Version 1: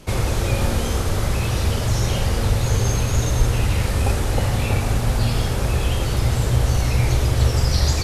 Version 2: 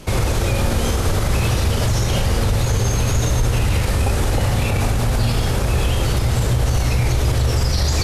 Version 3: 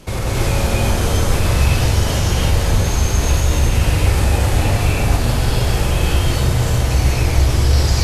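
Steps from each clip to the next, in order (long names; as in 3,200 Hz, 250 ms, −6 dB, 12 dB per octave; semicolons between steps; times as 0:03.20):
brickwall limiter −15 dBFS, peak gain reduction 9.5 dB; level +5.5 dB
reverb whose tail is shaped and stops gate 330 ms rising, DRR −4.5 dB; level −3.5 dB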